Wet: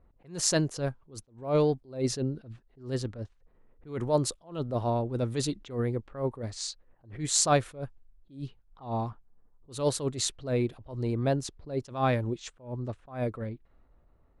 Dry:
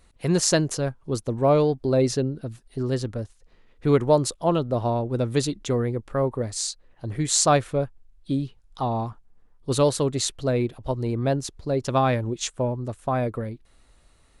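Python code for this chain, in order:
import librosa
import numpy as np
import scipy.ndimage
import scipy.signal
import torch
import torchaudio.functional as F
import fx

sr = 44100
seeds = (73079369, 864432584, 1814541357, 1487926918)

y = fx.env_lowpass(x, sr, base_hz=900.0, full_db=-21.0)
y = fx.attack_slew(y, sr, db_per_s=160.0)
y = y * 10.0 ** (-3.5 / 20.0)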